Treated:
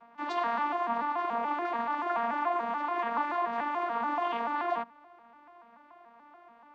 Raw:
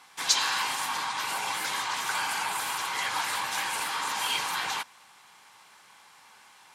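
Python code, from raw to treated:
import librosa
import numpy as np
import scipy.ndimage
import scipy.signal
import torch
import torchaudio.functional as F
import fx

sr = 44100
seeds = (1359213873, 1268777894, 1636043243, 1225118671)

y = fx.vocoder_arp(x, sr, chord='major triad', root=58, every_ms=144)
y = fx.quant_dither(y, sr, seeds[0], bits=12, dither='triangular')
y = scipy.signal.sosfilt(scipy.signal.butter(2, 1300.0, 'lowpass', fs=sr, output='sos'), y)
y = F.gain(torch.from_numpy(y), 2.5).numpy()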